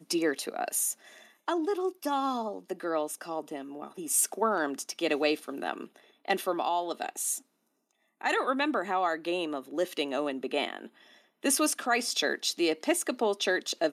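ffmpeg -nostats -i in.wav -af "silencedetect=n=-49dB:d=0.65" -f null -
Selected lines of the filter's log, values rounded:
silence_start: 7.41
silence_end: 8.21 | silence_duration: 0.80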